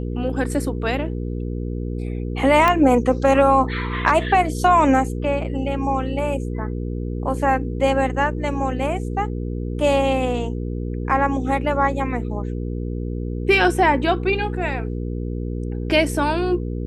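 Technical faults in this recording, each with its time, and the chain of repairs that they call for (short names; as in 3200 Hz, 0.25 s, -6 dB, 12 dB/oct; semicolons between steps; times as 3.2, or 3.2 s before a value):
hum 60 Hz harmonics 8 -26 dBFS
2.68 pop -5 dBFS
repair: de-click; de-hum 60 Hz, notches 8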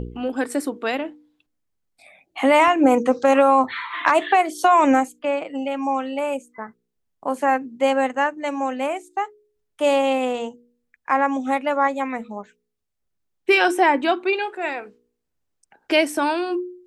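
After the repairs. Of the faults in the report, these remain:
none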